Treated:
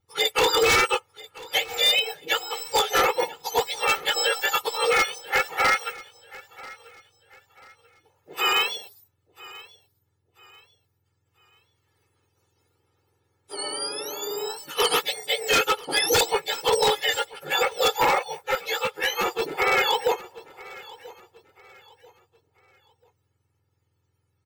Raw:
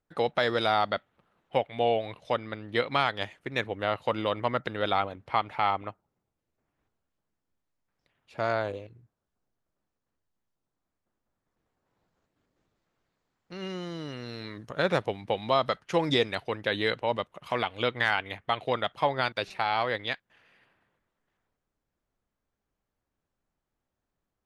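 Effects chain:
frequency axis turned over on the octave scale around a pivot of 1,300 Hz
comb filter 2.3 ms, depth 75%
wave folding −21 dBFS
on a send: repeating echo 988 ms, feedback 33%, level −20.5 dB
0:18.19–0:19.42: on the sum: string-ensemble chorus
level +7.5 dB

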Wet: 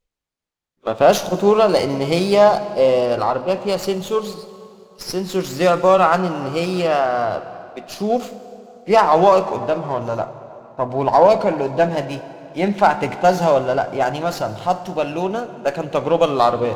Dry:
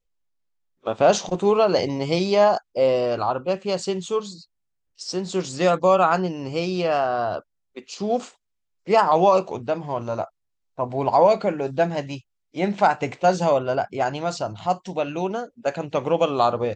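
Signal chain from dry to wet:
dense smooth reverb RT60 3.1 s, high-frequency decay 0.7×, DRR 11.5 dB
windowed peak hold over 3 samples
level +4 dB

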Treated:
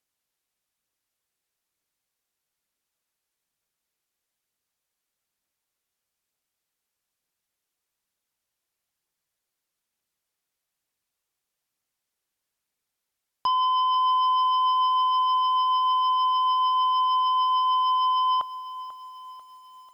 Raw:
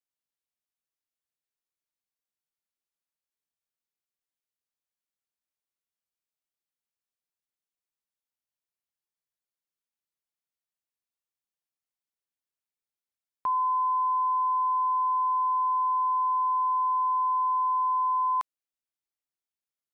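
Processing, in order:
treble cut that deepens with the level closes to 1,100 Hz
phase shifter 1.1 Hz, delay 2.9 ms, feedback 20%
harmonic generator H 2 −41 dB, 5 −14 dB, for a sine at −21 dBFS
feedback echo at a low word length 492 ms, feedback 55%, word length 9 bits, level −14.5 dB
level +4.5 dB

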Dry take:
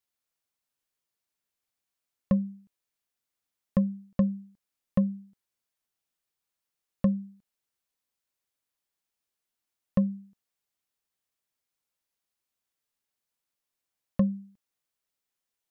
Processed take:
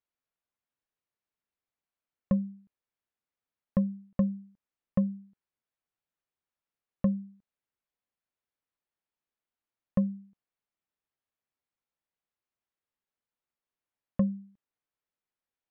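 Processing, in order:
Bessel low-pass filter 2,100 Hz
level −2 dB

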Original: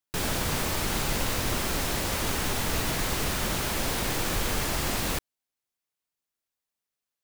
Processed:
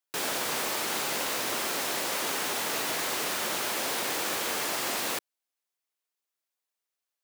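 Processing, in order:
high-pass filter 370 Hz 12 dB per octave

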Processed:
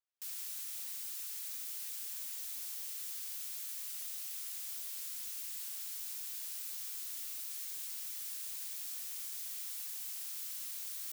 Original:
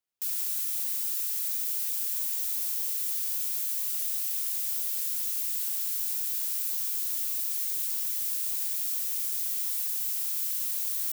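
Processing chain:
high-pass filter 480 Hz 24 dB per octave
high-shelf EQ 8,600 Hz −8 dB
level −5.5 dB

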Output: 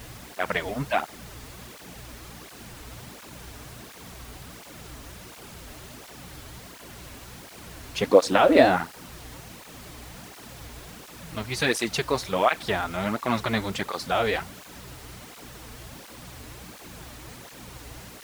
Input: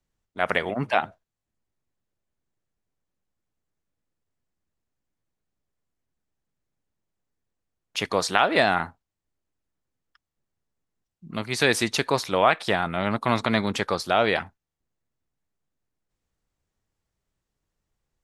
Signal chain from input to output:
mains hum 60 Hz, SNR 16 dB
0:08.00–0:08.76: hollow resonant body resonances 290/510 Hz, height 13 dB, ringing for 25 ms
background noise pink −40 dBFS
through-zero flanger with one copy inverted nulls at 1.4 Hz, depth 6.2 ms

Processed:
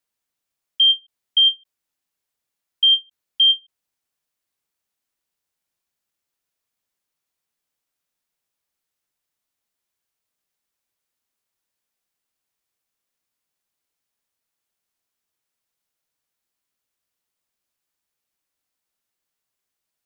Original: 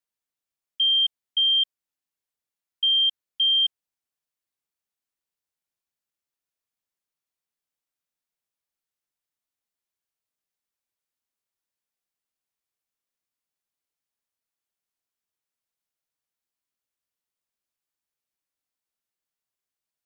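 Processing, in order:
every ending faded ahead of time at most 400 dB per second
level +7 dB

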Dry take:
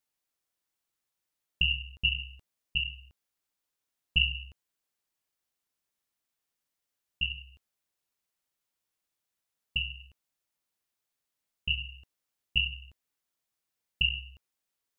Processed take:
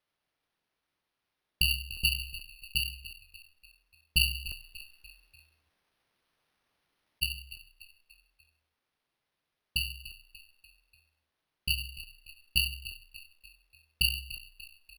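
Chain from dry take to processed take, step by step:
0:04.48–0:07.22: compressor whose output falls as the input rises −46 dBFS, ratio −1
bad sample-rate conversion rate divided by 6×, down none, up hold
echo with shifted repeats 293 ms, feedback 49%, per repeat −36 Hz, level −15.5 dB

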